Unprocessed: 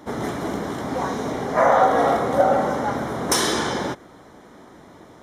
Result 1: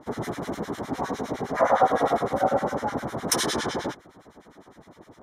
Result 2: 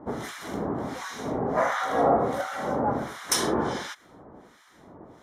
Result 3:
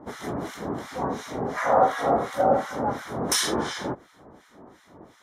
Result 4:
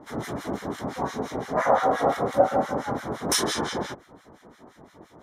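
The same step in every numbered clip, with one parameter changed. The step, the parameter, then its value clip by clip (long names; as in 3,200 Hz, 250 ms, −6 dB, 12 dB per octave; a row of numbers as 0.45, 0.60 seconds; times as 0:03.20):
two-band tremolo in antiphase, speed: 9.8, 1.4, 2.8, 5.8 Hertz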